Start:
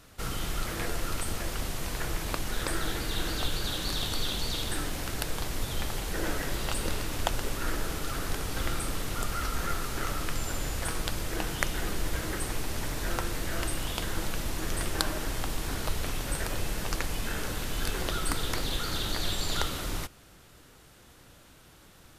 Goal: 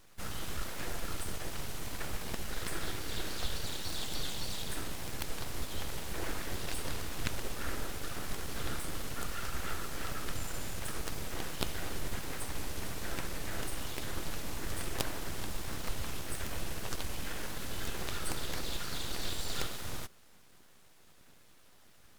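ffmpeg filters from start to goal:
-filter_complex "[0:a]aeval=exprs='abs(val(0))':c=same,asplit=2[s0][s1];[s1]asetrate=55563,aresample=44100,atempo=0.793701,volume=0.447[s2];[s0][s2]amix=inputs=2:normalize=0,volume=0.531"

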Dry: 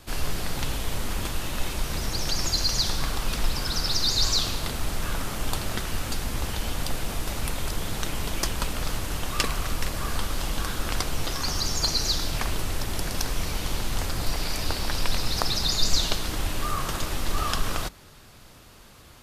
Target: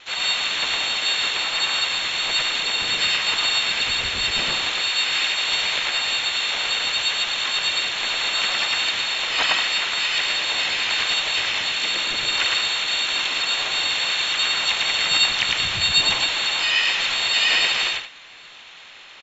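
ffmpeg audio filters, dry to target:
-filter_complex "[0:a]asplit=2[s0][s1];[s1]highpass=f=720:p=1,volume=3.98,asoftclip=type=tanh:threshold=0.501[s2];[s0][s2]amix=inputs=2:normalize=0,lowpass=f=2200:p=1,volume=0.501,lowpass=f=3100:t=q:w=0.5098,lowpass=f=3100:t=q:w=0.6013,lowpass=f=3100:t=q:w=0.9,lowpass=f=3100:t=q:w=2.563,afreqshift=-3700,asplit=2[s3][s4];[s4]aecho=0:1:107.9|180.8:0.891|0.355[s5];[s3][s5]amix=inputs=2:normalize=0,asplit=4[s6][s7][s8][s9];[s7]asetrate=33038,aresample=44100,atempo=1.33484,volume=0.708[s10];[s8]asetrate=52444,aresample=44100,atempo=0.840896,volume=0.891[s11];[s9]asetrate=88200,aresample=44100,atempo=0.5,volume=0.282[s12];[s6][s10][s11][s12]amix=inputs=4:normalize=0"

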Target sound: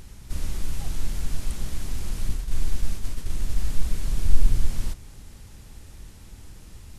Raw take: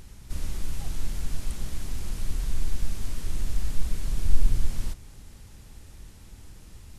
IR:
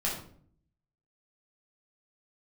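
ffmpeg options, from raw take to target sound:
-filter_complex "[0:a]asettb=1/sr,asplit=3[s0][s1][s2];[s0]atrim=end=2.294[s3];[s1]atrim=start=2.29:end=3.64,asetpts=PTS-STARTPTS,afade=t=in:d=0.004:c=qsin,afade=t=out:st=1.346:d=0.004:c=qsin,agate=range=0.0224:threshold=0.1:ratio=3:detection=peak[s4];[s2]atrim=start=3.636[s5];[s3][s4]acrossfade=d=0.004:c1=hsin:c2=qsin[s6];[s6][s5]acrossfade=d=0.004:c1=qsin:c2=hsin,volume=1.33"

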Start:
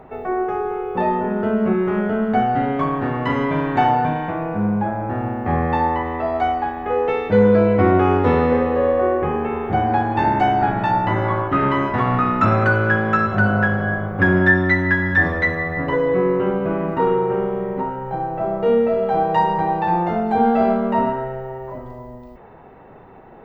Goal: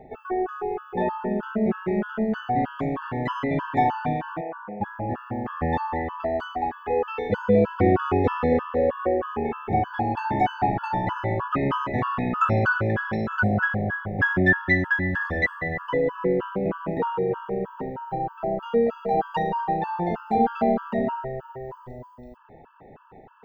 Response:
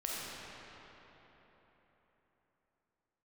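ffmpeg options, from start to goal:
-filter_complex "[0:a]asplit=3[s0][s1][s2];[s0]afade=t=out:st=4.4:d=0.02[s3];[s1]highpass=480,lowpass=2200,afade=t=in:st=4.4:d=0.02,afade=t=out:st=4.8:d=0.02[s4];[s2]afade=t=in:st=4.8:d=0.02[s5];[s3][s4][s5]amix=inputs=3:normalize=0,afftfilt=real='re*gt(sin(2*PI*3.2*pts/sr)*(1-2*mod(floor(b*sr/1024/870),2)),0)':imag='im*gt(sin(2*PI*3.2*pts/sr)*(1-2*mod(floor(b*sr/1024/870),2)),0)':win_size=1024:overlap=0.75,volume=0.708"

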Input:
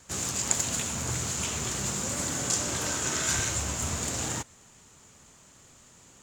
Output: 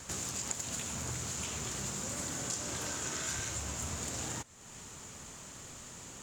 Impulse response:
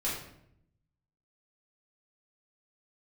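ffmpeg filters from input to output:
-af "acompressor=threshold=0.00282:ratio=2.5,volume=2.37"

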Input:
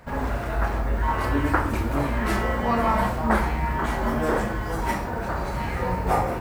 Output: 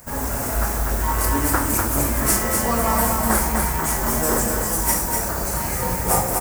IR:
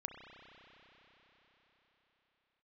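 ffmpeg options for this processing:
-af "aexciter=amount=13.6:drive=4.2:freq=5500,acrusher=bits=4:mode=log:mix=0:aa=0.000001,aecho=1:1:246:0.631"

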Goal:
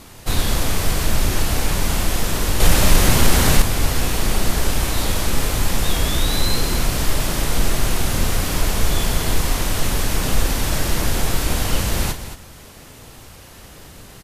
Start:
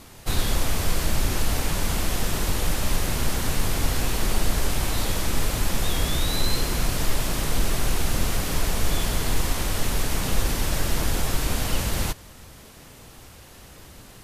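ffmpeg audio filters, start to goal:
-filter_complex "[0:a]asplit=2[s0][s1];[s1]aecho=0:1:34.99|224.5:0.316|0.282[s2];[s0][s2]amix=inputs=2:normalize=0,asettb=1/sr,asplit=3[s3][s4][s5];[s3]atrim=end=2.604[s6];[s4]atrim=start=2.6:end=3.62,asetpts=PTS-STARTPTS,afade=t=in:d=0.004:c=qsin,afade=t=out:st=1.016:d=0.004:c=qsin,acontrast=70[s7];[s5]atrim=start=3.616[s8];[s6][s7]acrossfade=d=0.004:c1=hsin:c2=qsin[s9];[s9][s8]acrossfade=d=0.004:c1=qsin:c2=hsin,volume=1.58"

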